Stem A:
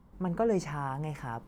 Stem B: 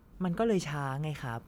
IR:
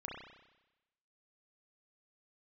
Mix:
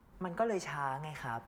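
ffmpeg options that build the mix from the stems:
-filter_complex "[0:a]highpass=490,equalizer=frequency=1700:width_type=o:width=0.86:gain=4.5,volume=-3dB,asplit=2[link_01][link_02];[link_02]volume=-12.5dB[link_03];[1:a]acompressor=threshold=-35dB:ratio=6,adelay=7,volume=-4dB[link_04];[2:a]atrim=start_sample=2205[link_05];[link_03][link_05]afir=irnorm=-1:irlink=0[link_06];[link_01][link_04][link_06]amix=inputs=3:normalize=0"

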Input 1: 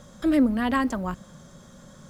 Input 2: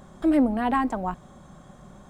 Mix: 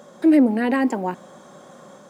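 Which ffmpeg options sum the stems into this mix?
ffmpeg -i stem1.wav -i stem2.wav -filter_complex "[0:a]equalizer=frequency=470:width_type=o:width=2.6:gain=11.5,volume=-3.5dB[link_01];[1:a]alimiter=limit=-18.5dB:level=0:latency=1:release=25,dynaudnorm=framelen=150:gausssize=3:maxgain=5.5dB,volume=-0.5dB[link_02];[link_01][link_02]amix=inputs=2:normalize=0,highpass=290" out.wav

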